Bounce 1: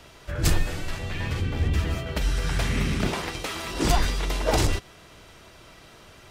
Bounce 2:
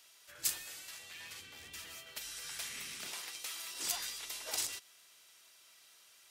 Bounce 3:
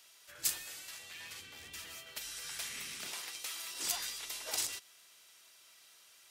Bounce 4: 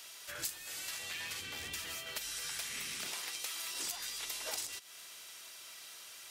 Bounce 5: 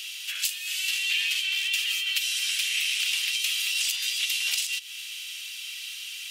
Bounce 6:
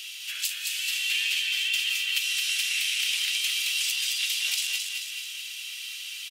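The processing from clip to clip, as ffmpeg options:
-af "aderivative,volume=0.668"
-af "asoftclip=type=hard:threshold=0.0891,volume=1.12"
-af "acompressor=threshold=0.00398:ratio=6,volume=3.16"
-af "highpass=f=2800:t=q:w=4.4,volume=2.66"
-af "aecho=1:1:218|436|654|872|1090|1308|1526:0.631|0.341|0.184|0.0994|0.0537|0.029|0.0156,volume=0.794"

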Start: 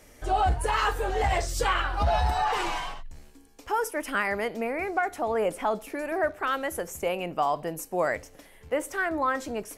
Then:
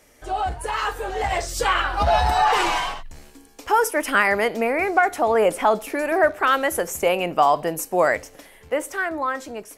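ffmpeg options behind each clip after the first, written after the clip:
-af "lowshelf=f=210:g=-7,dynaudnorm=f=400:g=9:m=3.16"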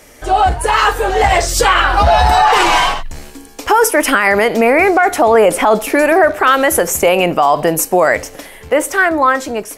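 -af "alimiter=level_in=5.01:limit=0.891:release=50:level=0:latency=1,volume=0.891"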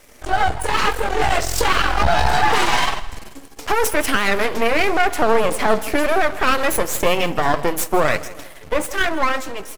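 -af "flanger=delay=3.9:depth=5.2:regen=-49:speed=0.96:shape=sinusoidal,aeval=exprs='max(val(0),0)':c=same,aecho=1:1:161|322|483|644:0.126|0.0554|0.0244|0.0107,volume=1.19"

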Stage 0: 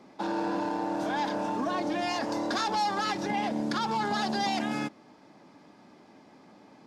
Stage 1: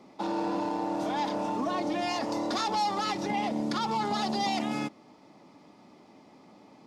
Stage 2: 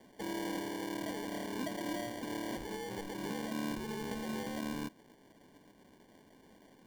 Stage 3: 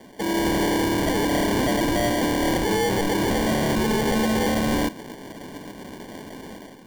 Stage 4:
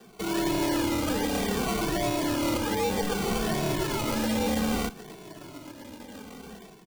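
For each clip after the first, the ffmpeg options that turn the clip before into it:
-af "bandreject=f=1600:w=5.2"
-filter_complex "[0:a]acrossover=split=530[s0][s1];[s1]acompressor=threshold=0.01:ratio=6[s2];[s0][s2]amix=inputs=2:normalize=0,acrusher=samples=34:mix=1:aa=0.000001,volume=0.501"
-af "dynaudnorm=f=160:g=5:m=3.16,aeval=exprs='0.119*sin(PI/2*2.82*val(0)/0.119)':c=same"
-filter_complex "[0:a]acrossover=split=100|2500[s0][s1][s2];[s1]acrusher=samples=20:mix=1:aa=0.000001:lfo=1:lforange=12:lforate=1.3[s3];[s0][s3][s2]amix=inputs=3:normalize=0,asplit=2[s4][s5];[s5]adelay=2.2,afreqshift=-0.61[s6];[s4][s6]amix=inputs=2:normalize=1,volume=0.75"

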